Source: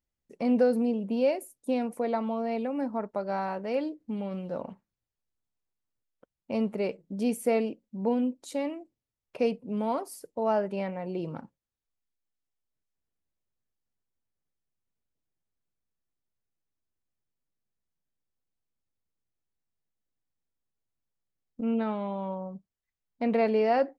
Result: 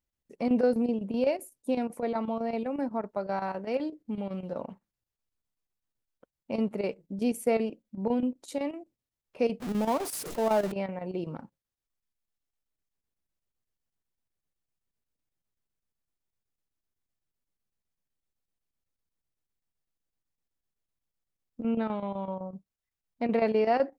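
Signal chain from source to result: 9.6–10.72 zero-crossing step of -32 dBFS; chopper 7.9 Hz, depth 65%, duty 80%

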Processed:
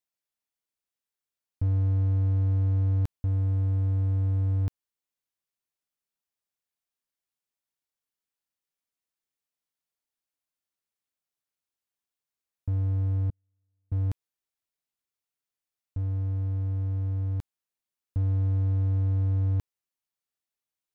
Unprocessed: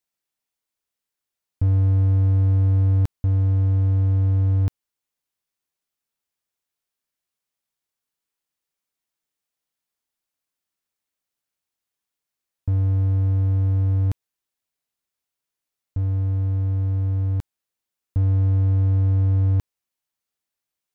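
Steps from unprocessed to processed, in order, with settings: 13.3–13.92 gate -5 dBFS, range -51 dB; gain -6.5 dB

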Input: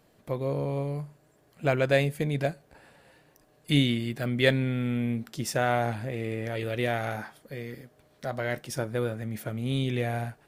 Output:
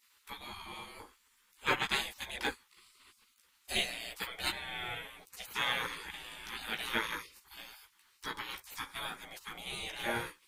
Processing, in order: chorus voices 2, 0.21 Hz, delay 15 ms, depth 4.3 ms; small resonant body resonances 680/3300 Hz, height 15 dB, ringing for 30 ms; spectral gate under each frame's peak -25 dB weak; gain +7.5 dB

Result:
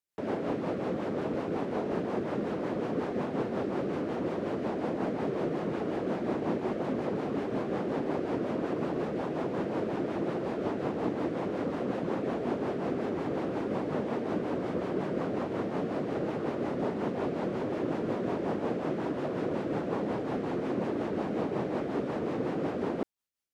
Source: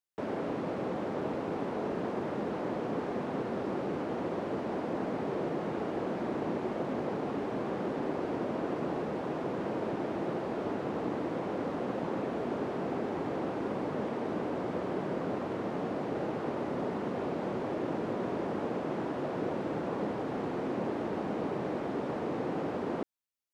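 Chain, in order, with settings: rotary speaker horn 5.5 Hz; gain +4 dB

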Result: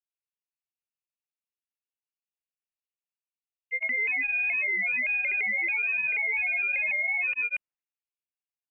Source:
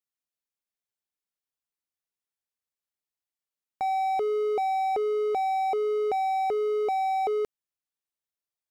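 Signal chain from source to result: grains 0.1 s, grains 20/s, spray 0.132 s, pitch spread up and down by 3 st; low-pass opened by the level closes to 480 Hz, open at -29 dBFS; inverted band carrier 2900 Hz

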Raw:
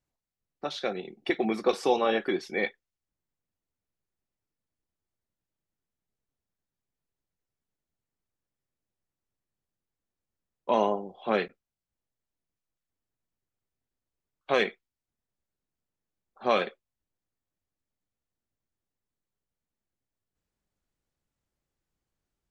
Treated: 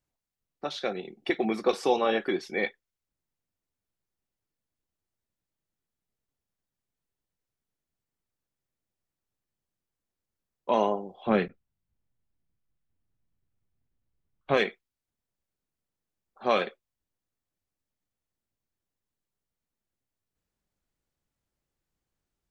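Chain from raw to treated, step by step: 11.27–14.57 tone controls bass +12 dB, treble -10 dB

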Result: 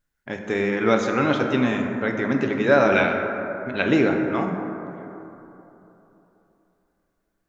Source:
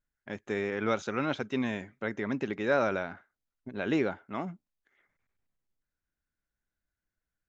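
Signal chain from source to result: 2.92–3.82 bell 2700 Hz +13 dB 1.5 oct; plate-style reverb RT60 3.3 s, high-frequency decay 0.3×, DRR 2.5 dB; gain +8 dB

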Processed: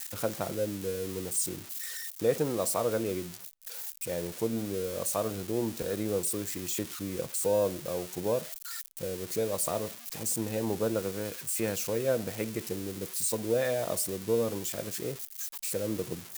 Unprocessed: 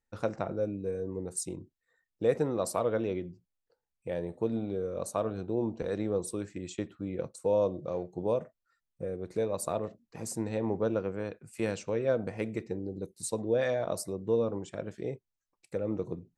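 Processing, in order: switching spikes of -27 dBFS

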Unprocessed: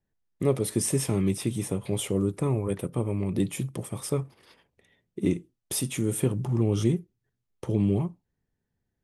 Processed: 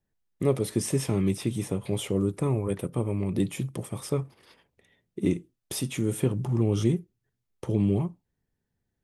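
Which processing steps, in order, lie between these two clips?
dynamic EQ 9800 Hz, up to -6 dB, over -45 dBFS, Q 1.1

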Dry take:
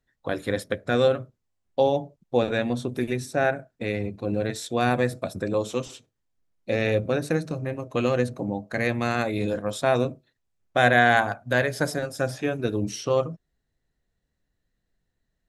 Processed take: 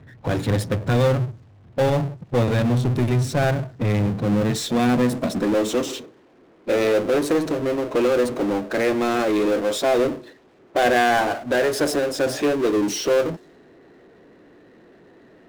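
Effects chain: low-pass opened by the level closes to 3000 Hz, open at -21.5 dBFS; low shelf 230 Hz +8 dB; high-pass sweep 110 Hz -> 350 Hz, 3.79–6.06; power-law curve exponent 0.5; mismatched tape noise reduction decoder only; gain -7 dB

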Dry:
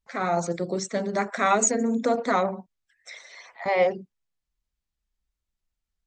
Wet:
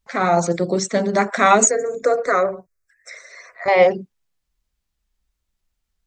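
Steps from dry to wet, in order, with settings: 1.65–3.68 fixed phaser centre 860 Hz, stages 6; gain +8 dB

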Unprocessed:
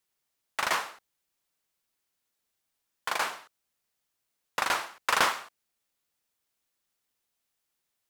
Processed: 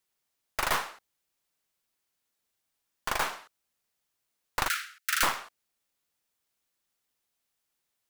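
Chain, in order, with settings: tracing distortion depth 0.41 ms; 4.68–5.23 steep high-pass 1300 Hz 96 dB/oct

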